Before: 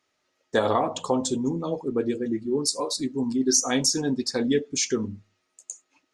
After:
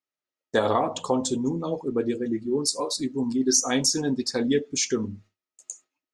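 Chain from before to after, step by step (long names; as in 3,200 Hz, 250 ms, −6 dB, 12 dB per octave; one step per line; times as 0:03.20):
noise gate with hold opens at −39 dBFS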